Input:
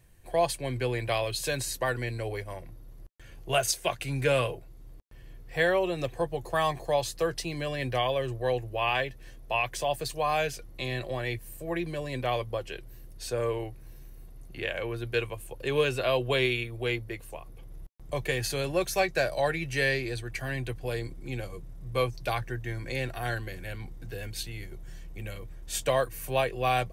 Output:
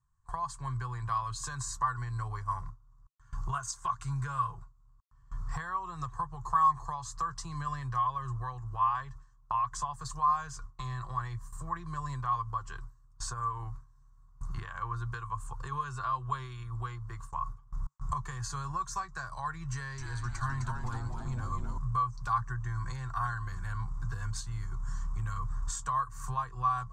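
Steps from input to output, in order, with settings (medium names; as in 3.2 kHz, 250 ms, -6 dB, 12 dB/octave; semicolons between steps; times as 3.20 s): recorder AGC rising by 8 dB/s; gate with hold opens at -31 dBFS; compression 6:1, threshold -33 dBFS, peak gain reduction 12.5 dB; FFT filter 140 Hz 0 dB, 260 Hz -19 dB, 400 Hz -19 dB, 580 Hz -26 dB, 1.1 kHz +15 dB, 2.4 kHz -23 dB, 7.5 kHz +1 dB, 11 kHz -24 dB; 19.72–21.78 s: frequency-shifting echo 258 ms, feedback 45%, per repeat -130 Hz, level -4.5 dB; trim +3.5 dB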